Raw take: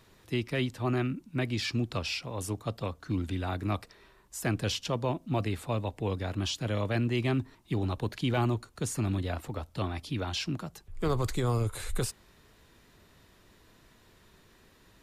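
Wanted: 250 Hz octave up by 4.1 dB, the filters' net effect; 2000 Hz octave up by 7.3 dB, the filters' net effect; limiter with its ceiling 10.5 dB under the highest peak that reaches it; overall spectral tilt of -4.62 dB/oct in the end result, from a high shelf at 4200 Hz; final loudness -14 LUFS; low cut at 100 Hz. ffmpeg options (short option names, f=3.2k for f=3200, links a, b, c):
-af "highpass=100,equalizer=f=250:t=o:g=5,equalizer=f=2k:t=o:g=8.5,highshelf=f=4.2k:g=3.5,volume=19.5dB,alimiter=limit=-3.5dB:level=0:latency=1"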